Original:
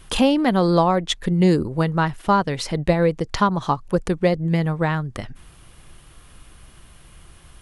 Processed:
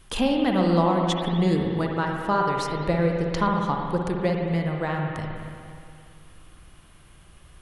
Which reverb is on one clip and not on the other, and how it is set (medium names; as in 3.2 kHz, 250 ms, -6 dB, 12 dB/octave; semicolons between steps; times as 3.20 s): spring tank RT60 2.4 s, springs 53/58 ms, chirp 60 ms, DRR 0.5 dB; trim -6.5 dB